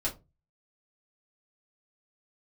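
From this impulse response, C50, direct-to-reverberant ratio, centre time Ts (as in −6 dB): 14.0 dB, −6.0 dB, 14 ms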